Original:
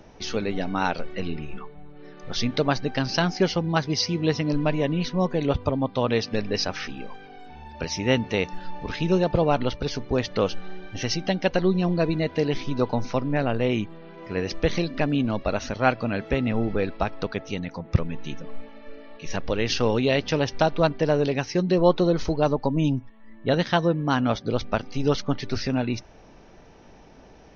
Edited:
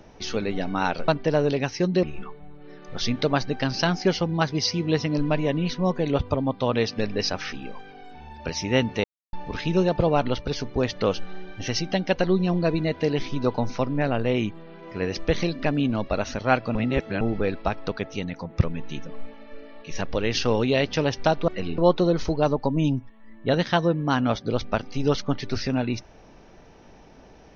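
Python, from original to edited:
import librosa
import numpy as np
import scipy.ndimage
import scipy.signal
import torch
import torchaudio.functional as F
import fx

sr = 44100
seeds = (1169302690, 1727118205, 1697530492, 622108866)

y = fx.edit(x, sr, fx.swap(start_s=1.08, length_s=0.3, other_s=20.83, other_length_s=0.95),
    fx.silence(start_s=8.39, length_s=0.29),
    fx.reverse_span(start_s=16.1, length_s=0.46), tone=tone)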